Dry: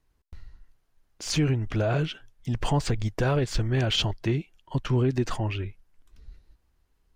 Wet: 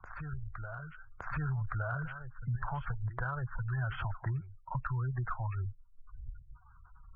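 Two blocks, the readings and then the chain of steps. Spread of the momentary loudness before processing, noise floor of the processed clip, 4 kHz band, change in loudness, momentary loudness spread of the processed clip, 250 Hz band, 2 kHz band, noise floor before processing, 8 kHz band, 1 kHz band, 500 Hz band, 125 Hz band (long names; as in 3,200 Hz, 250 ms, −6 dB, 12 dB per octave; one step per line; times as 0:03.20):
9 LU, −59 dBFS, −28.0 dB, −10.5 dB, 12 LU, −16.5 dB, −4.5 dB, −70 dBFS, below −40 dB, −5.0 dB, −19.0 dB, −8.0 dB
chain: adaptive Wiener filter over 15 samples
drawn EQ curve 130 Hz 0 dB, 260 Hz −19 dB, 1,400 Hz +12 dB, 3,600 Hz −24 dB
gate on every frequency bin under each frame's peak −25 dB strong
dynamic equaliser 370 Hz, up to −6 dB, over −42 dBFS, Q 0.81
soft clipping −8 dBFS, distortion −40 dB
downward compressor, threshold −28 dBFS, peak gain reduction 7.5 dB
backwards echo 1,165 ms −15.5 dB
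multiband upward and downward compressor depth 70%
level −3 dB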